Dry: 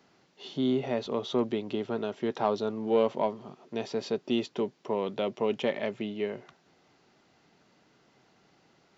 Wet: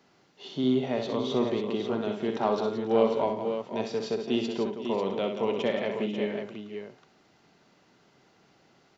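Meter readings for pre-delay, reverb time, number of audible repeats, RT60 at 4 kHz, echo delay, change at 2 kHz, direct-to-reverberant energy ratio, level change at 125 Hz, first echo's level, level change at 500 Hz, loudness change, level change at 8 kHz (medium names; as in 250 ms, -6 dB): no reverb, no reverb, 5, no reverb, 62 ms, +2.0 dB, no reverb, +2.5 dB, -6.5 dB, +2.0 dB, +2.0 dB, no reading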